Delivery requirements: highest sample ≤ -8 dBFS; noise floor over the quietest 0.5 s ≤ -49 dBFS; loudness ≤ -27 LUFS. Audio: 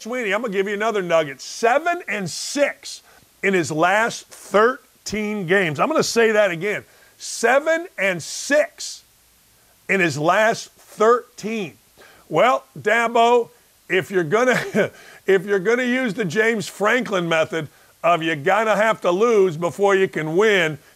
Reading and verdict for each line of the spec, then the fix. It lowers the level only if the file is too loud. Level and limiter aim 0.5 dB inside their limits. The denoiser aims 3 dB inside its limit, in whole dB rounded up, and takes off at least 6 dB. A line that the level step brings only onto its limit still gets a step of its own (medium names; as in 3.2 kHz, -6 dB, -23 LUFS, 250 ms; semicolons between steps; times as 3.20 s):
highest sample -6.0 dBFS: fail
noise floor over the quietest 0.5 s -56 dBFS: pass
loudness -19.5 LUFS: fail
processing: trim -8 dB